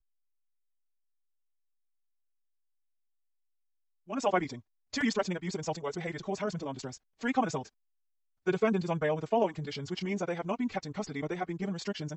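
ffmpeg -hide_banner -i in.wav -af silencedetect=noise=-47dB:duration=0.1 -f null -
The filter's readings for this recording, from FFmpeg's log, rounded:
silence_start: 0.00
silence_end: 4.08 | silence_duration: 4.08
silence_start: 4.60
silence_end: 4.93 | silence_duration: 0.33
silence_start: 6.97
silence_end: 7.21 | silence_duration: 0.24
silence_start: 7.68
silence_end: 8.47 | silence_duration: 0.79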